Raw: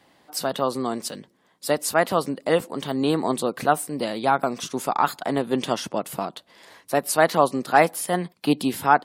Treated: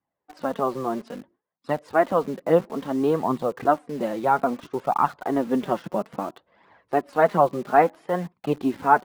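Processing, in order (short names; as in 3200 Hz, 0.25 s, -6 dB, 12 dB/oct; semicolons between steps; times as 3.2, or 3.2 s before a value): LPF 1500 Hz 12 dB/oct; gate with hold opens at -48 dBFS; flange 0.6 Hz, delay 0.7 ms, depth 5.4 ms, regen +15%; in parallel at -5.5 dB: bit-crush 7-bit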